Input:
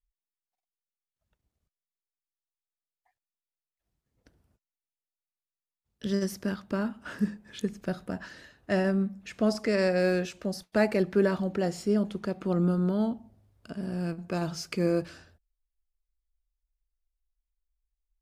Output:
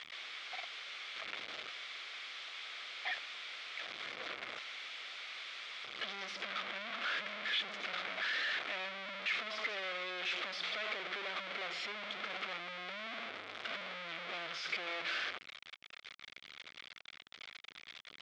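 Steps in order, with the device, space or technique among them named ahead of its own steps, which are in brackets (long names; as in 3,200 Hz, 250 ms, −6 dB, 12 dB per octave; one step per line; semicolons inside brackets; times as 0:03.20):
home computer beeper (sign of each sample alone; loudspeaker in its box 680–4,300 Hz, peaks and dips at 910 Hz −8 dB, 1,300 Hz +4 dB, 2,200 Hz +9 dB, 3,400 Hz +7 dB)
level −5.5 dB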